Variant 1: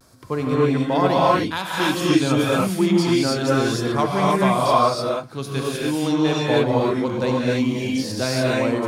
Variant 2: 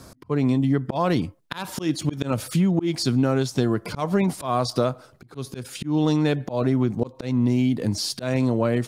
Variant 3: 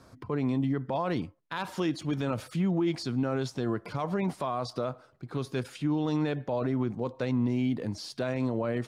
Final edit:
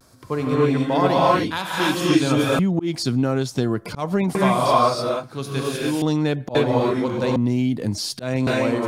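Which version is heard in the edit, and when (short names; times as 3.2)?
1
2.59–4.35 from 2
6.02–6.55 from 2
7.36–8.47 from 2
not used: 3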